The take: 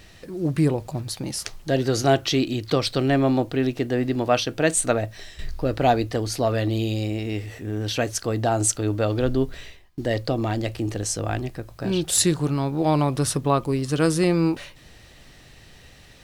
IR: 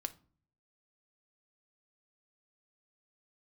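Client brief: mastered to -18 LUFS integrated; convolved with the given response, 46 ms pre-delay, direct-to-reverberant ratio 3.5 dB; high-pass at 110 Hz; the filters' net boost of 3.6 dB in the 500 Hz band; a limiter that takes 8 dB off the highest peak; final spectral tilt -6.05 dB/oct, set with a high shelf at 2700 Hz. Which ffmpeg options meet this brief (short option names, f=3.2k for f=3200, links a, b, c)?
-filter_complex "[0:a]highpass=110,equalizer=f=500:t=o:g=5,highshelf=f=2.7k:g=-8,alimiter=limit=-12dB:level=0:latency=1,asplit=2[a][b];[1:a]atrim=start_sample=2205,adelay=46[c];[b][c]afir=irnorm=-1:irlink=0,volume=-2dB[d];[a][d]amix=inputs=2:normalize=0,volume=5dB"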